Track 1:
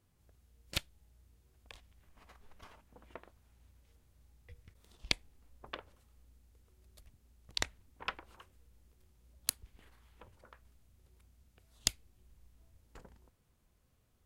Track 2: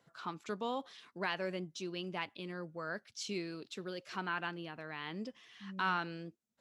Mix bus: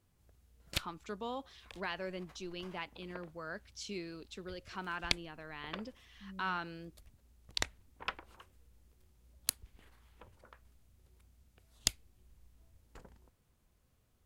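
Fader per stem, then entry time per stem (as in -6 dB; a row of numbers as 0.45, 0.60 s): 0.0, -3.0 dB; 0.00, 0.60 s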